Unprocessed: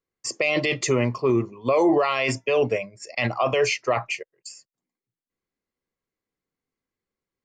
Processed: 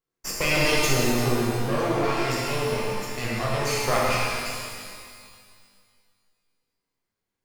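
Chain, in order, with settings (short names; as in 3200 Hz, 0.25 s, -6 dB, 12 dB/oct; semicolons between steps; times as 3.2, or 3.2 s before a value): spectral gain 0.87–3.82, 230–4200 Hz -7 dB; half-wave rectifier; shimmer reverb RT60 2 s, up +12 st, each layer -8 dB, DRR -6 dB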